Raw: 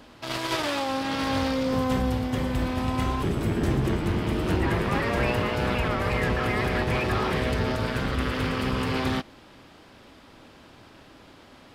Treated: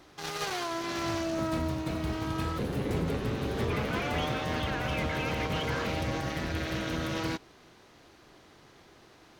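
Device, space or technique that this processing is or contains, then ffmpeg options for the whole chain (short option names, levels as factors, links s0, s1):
nightcore: -af "asetrate=55125,aresample=44100,volume=0.501"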